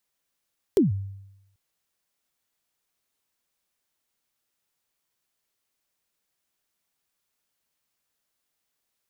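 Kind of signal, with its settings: kick drum length 0.79 s, from 440 Hz, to 98 Hz, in 144 ms, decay 0.89 s, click on, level -13 dB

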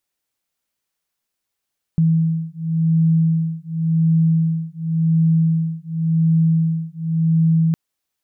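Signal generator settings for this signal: beating tones 162 Hz, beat 0.91 Hz, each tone -17.5 dBFS 5.76 s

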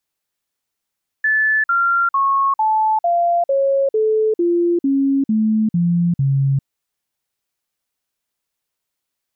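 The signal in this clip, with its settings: stepped sine 1.74 kHz down, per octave 3, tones 12, 0.40 s, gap 0.05 s -13 dBFS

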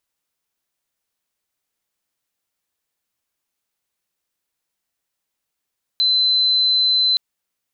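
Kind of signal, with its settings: tone sine 4.05 kHz -13.5 dBFS 1.17 s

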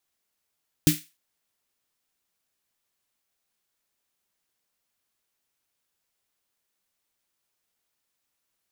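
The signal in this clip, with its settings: snare drum length 0.30 s, tones 160 Hz, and 300 Hz, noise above 1.8 kHz, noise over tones -6 dB, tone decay 0.18 s, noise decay 0.30 s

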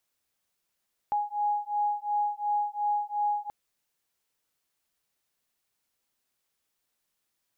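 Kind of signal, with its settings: beating tones 828 Hz, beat 2.8 Hz, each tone -29 dBFS 2.38 s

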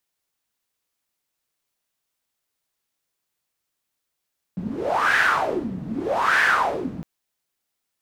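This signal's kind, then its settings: wind-like swept noise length 2.46 s, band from 180 Hz, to 1.7 kHz, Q 6.5, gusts 2, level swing 12.5 dB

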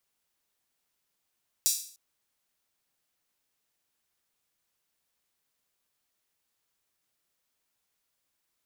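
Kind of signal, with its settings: open hi-hat length 0.30 s, high-pass 5.5 kHz, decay 0.49 s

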